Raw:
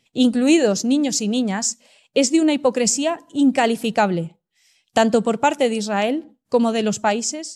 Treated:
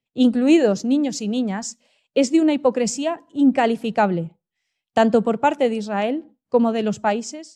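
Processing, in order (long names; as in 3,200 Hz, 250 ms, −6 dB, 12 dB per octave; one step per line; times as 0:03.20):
low-pass filter 2,000 Hz 6 dB per octave
multiband upward and downward expander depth 40%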